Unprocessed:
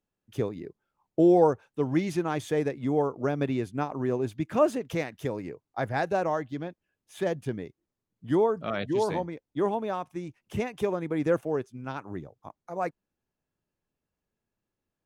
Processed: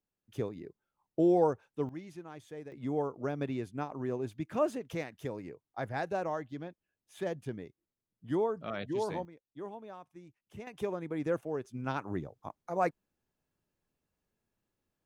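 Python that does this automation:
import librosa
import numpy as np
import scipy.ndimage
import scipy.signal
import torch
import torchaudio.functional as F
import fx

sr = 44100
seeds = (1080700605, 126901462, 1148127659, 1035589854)

y = fx.gain(x, sr, db=fx.steps((0.0, -6.0), (1.89, -18.0), (2.72, -7.0), (9.25, -16.0), (10.67, -7.0), (11.65, 1.0)))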